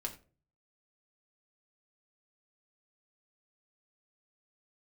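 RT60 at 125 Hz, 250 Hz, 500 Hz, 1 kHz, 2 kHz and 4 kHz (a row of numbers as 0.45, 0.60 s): 0.70, 0.50, 0.45, 0.30, 0.30, 0.25 s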